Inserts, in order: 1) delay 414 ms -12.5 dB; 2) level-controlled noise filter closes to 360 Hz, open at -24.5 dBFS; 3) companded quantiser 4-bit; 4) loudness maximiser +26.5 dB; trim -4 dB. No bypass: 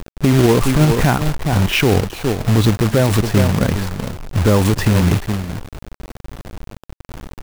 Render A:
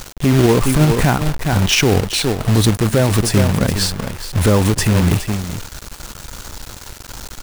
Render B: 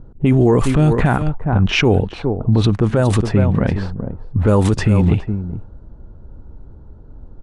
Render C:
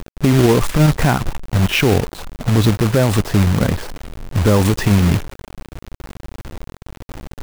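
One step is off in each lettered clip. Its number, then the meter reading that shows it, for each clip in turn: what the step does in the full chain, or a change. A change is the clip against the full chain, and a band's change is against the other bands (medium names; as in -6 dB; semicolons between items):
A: 2, 8 kHz band +6.0 dB; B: 3, distortion -13 dB; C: 1, momentary loudness spread change +1 LU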